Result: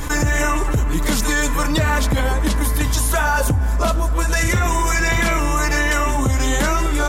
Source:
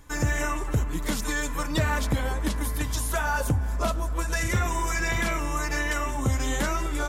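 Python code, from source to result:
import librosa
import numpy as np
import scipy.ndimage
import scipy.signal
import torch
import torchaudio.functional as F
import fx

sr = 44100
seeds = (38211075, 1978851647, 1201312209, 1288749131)

y = fx.env_flatten(x, sr, amount_pct=70)
y = y * librosa.db_to_amplitude(4.5)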